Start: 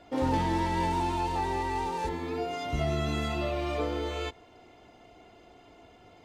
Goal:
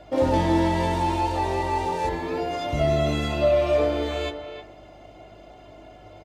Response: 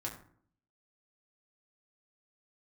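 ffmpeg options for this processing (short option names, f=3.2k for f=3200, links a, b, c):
-filter_complex "[0:a]equalizer=f=610:w=6.5:g=13.5,asplit=2[a][b];[b]adelay=310,highpass=300,lowpass=3.4k,asoftclip=type=hard:threshold=-23dB,volume=-9dB[c];[a][c]amix=inputs=2:normalize=0,asplit=2[d][e];[1:a]atrim=start_sample=2205[f];[e][f]afir=irnorm=-1:irlink=0,volume=-1.5dB[g];[d][g]amix=inputs=2:normalize=0,aeval=exprs='val(0)+0.00224*(sin(2*PI*50*n/s)+sin(2*PI*2*50*n/s)/2+sin(2*PI*3*50*n/s)/3+sin(2*PI*4*50*n/s)/4+sin(2*PI*5*50*n/s)/5)':c=same"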